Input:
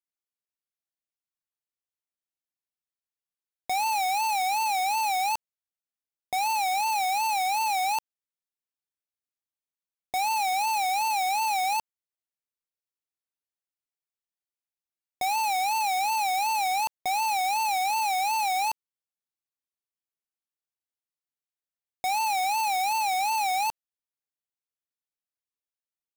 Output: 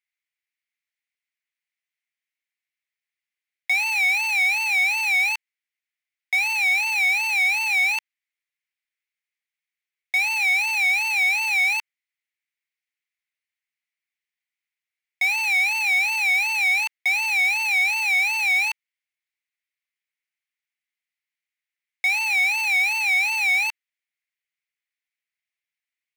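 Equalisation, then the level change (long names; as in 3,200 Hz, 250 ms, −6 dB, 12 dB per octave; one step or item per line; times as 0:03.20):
high-pass with resonance 2,100 Hz, resonance Q 5
high-shelf EQ 4,300 Hz −9 dB
+6.0 dB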